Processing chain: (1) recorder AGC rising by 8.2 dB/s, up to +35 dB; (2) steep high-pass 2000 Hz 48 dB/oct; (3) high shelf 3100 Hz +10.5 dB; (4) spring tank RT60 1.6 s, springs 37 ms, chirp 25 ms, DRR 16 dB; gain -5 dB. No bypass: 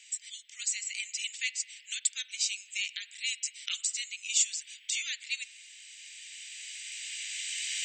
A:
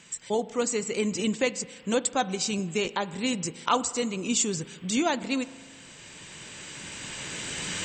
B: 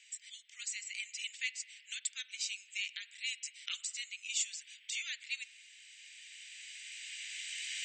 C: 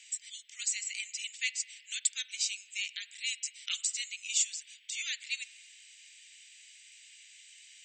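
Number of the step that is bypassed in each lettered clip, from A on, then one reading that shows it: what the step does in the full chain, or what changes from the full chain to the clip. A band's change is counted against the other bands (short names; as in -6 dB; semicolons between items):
2, crest factor change -5.0 dB; 3, crest factor change -2.0 dB; 1, momentary loudness spread change +7 LU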